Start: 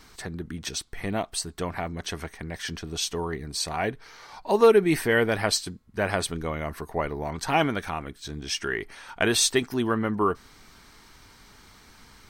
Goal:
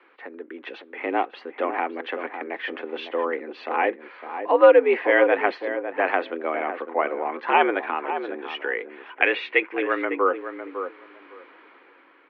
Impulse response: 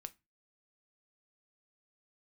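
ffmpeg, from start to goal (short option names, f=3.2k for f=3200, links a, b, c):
-filter_complex "[0:a]asettb=1/sr,asplit=3[a][b][c];[a]atrim=end=9.214[d];[b]atrim=start=9.21:end=10.05,asetpts=PTS-STARTPTS,afade=t=in:d=0.004:c=qsin,afade=t=out:st=0.836:d=0.004:c=qsin,equalizer=f=2.2k:t=o:w=0.71:g=14[e];[c]atrim=start=10.046[f];[d][e]acrossfade=d=0.004:c1=hsin:c2=qsin[g];[g][f]acrossfade=d=0.004:c1=qsin:c2=hsin,dynaudnorm=f=150:g=9:m=7dB,asplit=2[h][i];[i]adelay=555,lowpass=f=1.2k:p=1,volume=-8dB,asplit=2[j][k];[k]adelay=555,lowpass=f=1.2k:p=1,volume=0.18,asplit=2[l][m];[m]adelay=555,lowpass=f=1.2k:p=1,volume=0.18[n];[h][j][l][n]amix=inputs=4:normalize=0,highpass=f=230:t=q:w=0.5412,highpass=f=230:t=q:w=1.307,lowpass=f=2.7k:t=q:w=0.5176,lowpass=f=2.7k:t=q:w=0.7071,lowpass=f=2.7k:t=q:w=1.932,afreqshift=80,volume=-1dB"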